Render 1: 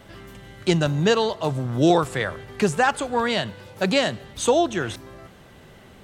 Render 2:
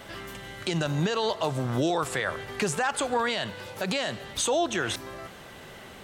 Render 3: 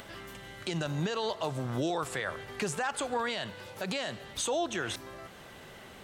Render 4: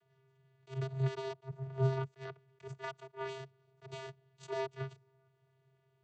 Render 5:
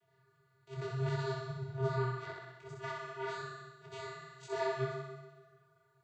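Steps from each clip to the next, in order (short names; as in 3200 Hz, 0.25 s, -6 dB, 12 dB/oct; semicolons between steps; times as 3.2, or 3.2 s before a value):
low shelf 350 Hz -9.5 dB; in parallel at +0.5 dB: compressor, threshold -31 dBFS, peak gain reduction 14.5 dB; on the sum: limiter -16.5 dBFS, peak gain reduction 11 dB
upward compressor, threshold -39 dBFS; gain -5.5 dB
added harmonics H 3 -9 dB, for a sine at -21.5 dBFS; vocoder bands 16, square 133 Hz; attack slew limiter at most 330 dB/s; gain +2 dB
flutter echo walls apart 10.9 m, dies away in 1.3 s; reverb, pre-delay 0.125 s, DRR 14.5 dB; detuned doubles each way 30 cents; gain +4 dB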